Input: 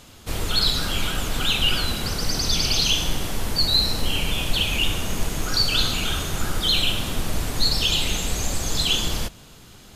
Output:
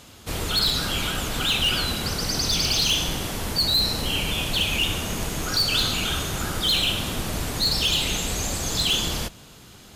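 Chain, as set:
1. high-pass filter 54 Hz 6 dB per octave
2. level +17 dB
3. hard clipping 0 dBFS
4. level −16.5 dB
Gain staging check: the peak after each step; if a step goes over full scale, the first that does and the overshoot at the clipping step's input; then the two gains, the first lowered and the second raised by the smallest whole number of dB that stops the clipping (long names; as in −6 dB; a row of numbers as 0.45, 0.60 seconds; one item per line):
−8.5, +8.5, 0.0, −16.5 dBFS
step 2, 8.5 dB
step 2 +8 dB, step 4 −7.5 dB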